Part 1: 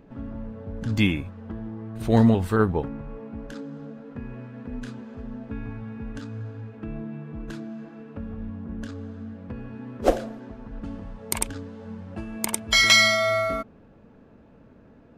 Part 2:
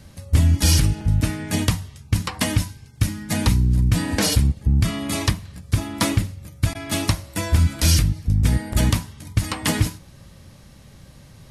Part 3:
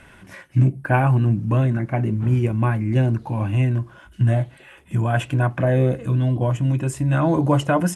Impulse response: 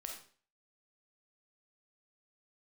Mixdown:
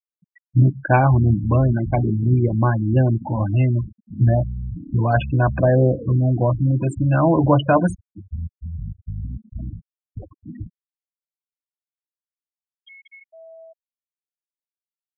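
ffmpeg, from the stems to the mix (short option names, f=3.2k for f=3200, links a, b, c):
-filter_complex "[0:a]acompressor=threshold=-25dB:ratio=8,flanger=delay=3.3:depth=3.3:regen=-88:speed=0.21:shape=sinusoidal,adelay=150,volume=-6.5dB,asplit=2[a][b];[b]volume=-15.5dB[c];[1:a]alimiter=limit=-11.5dB:level=0:latency=1:release=51,acrossover=split=5300[d][e];[e]acompressor=threshold=-44dB:ratio=4:attack=1:release=60[f];[d][f]amix=inputs=2:normalize=0,adelay=800,volume=-9.5dB[g];[2:a]adynamicequalizer=threshold=0.0224:dfrequency=670:dqfactor=1.1:tfrequency=670:tqfactor=1.1:attack=5:release=100:ratio=0.375:range=1.5:mode=boostabove:tftype=bell,volume=1.5dB,asplit=2[h][i];[i]apad=whole_len=675792[j];[a][j]sidechaincompress=threshold=-35dB:ratio=12:attack=5.6:release=105[k];[c]aecho=0:1:239|478|717|956|1195|1434:1|0.43|0.185|0.0795|0.0342|0.0147[l];[k][g][h][l]amix=inputs=4:normalize=0,afftfilt=real='re*gte(hypot(re,im),0.1)':imag='im*gte(hypot(re,im),0.1)':win_size=1024:overlap=0.75"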